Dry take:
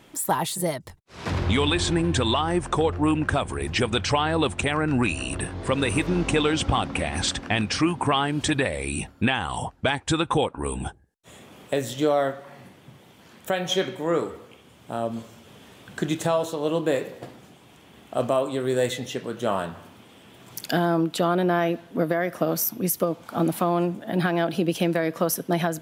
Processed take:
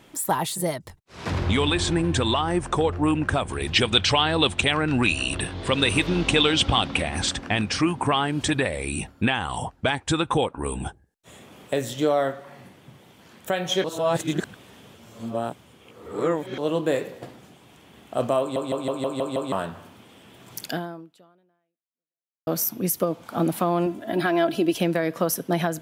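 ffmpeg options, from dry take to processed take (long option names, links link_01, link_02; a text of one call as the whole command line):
ffmpeg -i in.wav -filter_complex "[0:a]asettb=1/sr,asplit=3[link_01][link_02][link_03];[link_01]atrim=end=3.514[link_04];[link_02]atrim=start=3.51:end=7.02,asetpts=PTS-STARTPTS,afade=type=in:duration=0.004:curve=qsin,afade=type=out:start_time=3.506:duration=0.004:curve=qsin,equalizer=frequency=3500:width=1.3:gain=9.5[link_05];[link_03]atrim=start=7.016[link_06];[link_04][link_05]acrossfade=duration=0.004:curve1=hsin:curve2=qsin[link_07];[link_07][link_06]acrossfade=duration=0.004:curve1=qsin:curve2=hsin,asettb=1/sr,asplit=3[link_08][link_09][link_10];[link_08]atrim=end=23.864[link_11];[link_09]atrim=start=23.86:end=24.78,asetpts=PTS-STARTPTS,afade=type=in:duration=0.004:curve=qsin,afade=type=out:start_time=0.916:duration=0.004:curve=qsin,aecho=1:1:3:0.58,atrim=end_sample=40572[link_12];[link_10]atrim=start=24.776[link_13];[link_11][link_12]acrossfade=duration=0.004:curve1=hsin:curve2=qsin[link_14];[link_14][link_13]acrossfade=duration=0.004:curve1=qsin:curve2=hsin,asplit=11[link_15][link_16][link_17][link_18][link_19][link_20][link_21][link_22][link_23][link_24][link_25];[link_15]atrim=end=13.842[link_26];[link_16]atrim=start=13.838:end=16.582,asetpts=PTS-STARTPTS,areverse[link_27];[link_17]atrim=start=16.578:end=18.562[link_28];[link_18]atrim=start=18.398:end=18.562[link_29];[link_19]atrim=start=18.398:end=18.562[link_30];[link_20]atrim=start=18.398:end=18.562[link_31];[link_21]atrim=start=18.398:end=18.562[link_32];[link_22]atrim=start=18.398:end=18.562[link_33];[link_23]atrim=start=18.398:end=18.562[link_34];[link_24]atrim=start=19.518:end=22.47,asetpts=PTS-STARTPTS,afade=type=out:start_time=1.132:duration=1.82:curve=exp[link_35];[link_25]atrim=start=22.47,asetpts=PTS-STARTPTS,afade=type=in:duration=0.004:curve=hsin[link_36];[link_26][link_27]acrossfade=duration=0.004:curve1=hsin:curve2=hsin[link_37];[link_37][link_28]acrossfade=duration=0.004:curve1=hsin:curve2=hsin[link_38];[link_38][link_29]acrossfade=duration=0.004:curve1=hsin:curve2=hsin[link_39];[link_39][link_30]acrossfade=duration=0.004:curve1=hsin:curve2=hsin[link_40];[link_40][link_31]acrossfade=duration=0.004:curve1=hsin:curve2=hsin[link_41];[link_41][link_32]acrossfade=duration=0.004:curve1=hsin:curve2=hsin[link_42];[link_42][link_33]acrossfade=duration=0.004:curve1=hsin:curve2=hsin[link_43];[link_43][link_34]acrossfade=duration=0.004:curve1=hsin:curve2=hsin[link_44];[link_35][link_36]concat=n=2:v=0:a=1[link_45];[link_44][link_45]acrossfade=duration=0.004:curve1=hsin:curve2=hsin" out.wav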